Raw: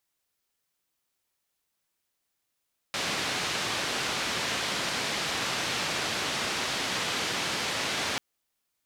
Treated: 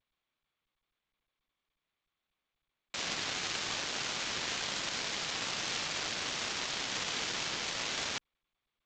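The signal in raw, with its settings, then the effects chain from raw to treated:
band-limited noise 96–4,300 Hz, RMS −30.5 dBFS 5.24 s
high-shelf EQ 3,800 Hz +9 dB
power curve on the samples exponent 2
G.722 64 kbit/s 16,000 Hz

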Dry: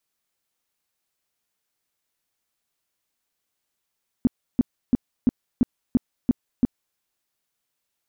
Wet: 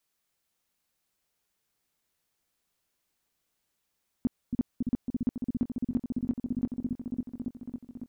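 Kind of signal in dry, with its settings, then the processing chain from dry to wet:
tone bursts 247 Hz, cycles 5, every 0.34 s, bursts 8, −12.5 dBFS
brickwall limiter −20.5 dBFS
on a send: echo whose low-pass opens from repeat to repeat 277 ms, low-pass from 200 Hz, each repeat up 1 octave, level 0 dB

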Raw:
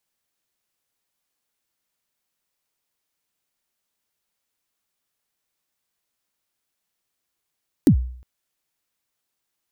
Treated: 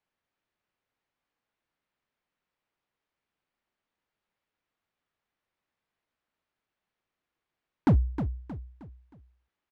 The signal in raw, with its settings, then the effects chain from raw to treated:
synth kick length 0.36 s, from 340 Hz, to 62 Hz, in 88 ms, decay 0.57 s, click on, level −7 dB
low-pass filter 2,400 Hz 12 dB per octave
hard clipping −17.5 dBFS
on a send: repeating echo 313 ms, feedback 38%, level −9.5 dB

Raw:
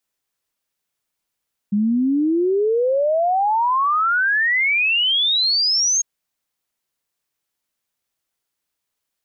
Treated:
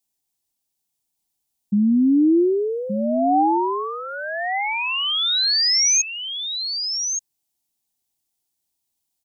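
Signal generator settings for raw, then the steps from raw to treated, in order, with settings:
exponential sine sweep 200 Hz → 6,600 Hz 4.30 s −15 dBFS
drawn EQ curve 340 Hz 0 dB, 530 Hz −12 dB, 770 Hz +1 dB, 1,300 Hz −15 dB, 3,800 Hz −2 dB, 8,200 Hz +3 dB
on a send: single-tap delay 1,173 ms −7 dB
on the sum: dynamic equaliser 320 Hz, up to +3 dB, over −32 dBFS, Q 1.5

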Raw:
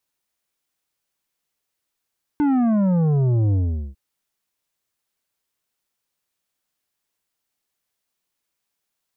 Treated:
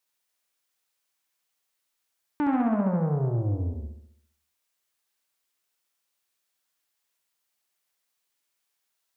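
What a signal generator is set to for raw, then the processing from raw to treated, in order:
bass drop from 300 Hz, over 1.55 s, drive 9 dB, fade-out 0.42 s, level −16.5 dB
low-shelf EQ 400 Hz −10.5 dB
flutter between parallel walls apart 11.5 metres, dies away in 0.68 s
highs frequency-modulated by the lows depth 0.23 ms

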